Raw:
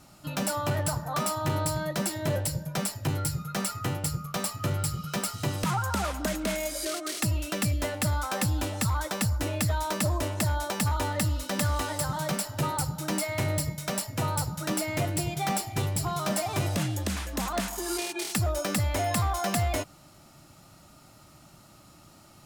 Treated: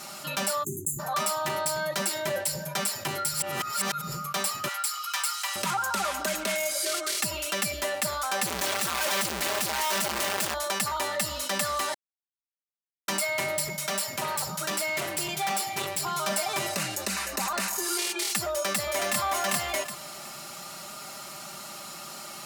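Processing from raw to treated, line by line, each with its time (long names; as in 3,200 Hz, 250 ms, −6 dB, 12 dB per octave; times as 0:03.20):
0:00.63–0:00.99: time-frequency box erased 410–6,200 Hz
0:03.34–0:04.12: reverse
0:04.68–0:05.56: Butterworth high-pass 840 Hz
0:08.46–0:10.54: comparator with hysteresis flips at −48 dBFS
0:11.94–0:13.08: silence
0:13.62–0:16.04: gain into a clipping stage and back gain 27.5 dB
0:16.72–0:17.85: notch filter 3,300 Hz, Q 5.6
0:18.50–0:19.20: delay throw 370 ms, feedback 15%, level −2.5 dB
whole clip: high-pass filter 900 Hz 6 dB per octave; comb filter 5.1 ms, depth 64%; envelope flattener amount 50%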